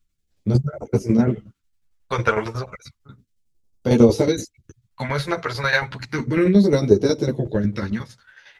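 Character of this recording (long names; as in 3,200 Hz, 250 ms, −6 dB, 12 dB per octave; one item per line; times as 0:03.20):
phaser sweep stages 2, 0.32 Hz, lowest notch 250–1,700 Hz
tremolo saw down 11 Hz, depth 70%
a shimmering, thickened sound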